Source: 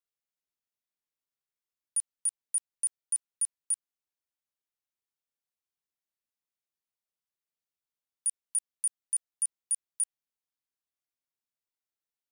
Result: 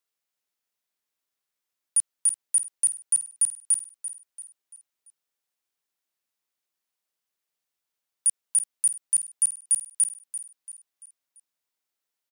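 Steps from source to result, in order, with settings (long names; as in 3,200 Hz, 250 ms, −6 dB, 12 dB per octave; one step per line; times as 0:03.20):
low-shelf EQ 190 Hz −9.5 dB
repeating echo 340 ms, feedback 43%, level −12 dB
level +7.5 dB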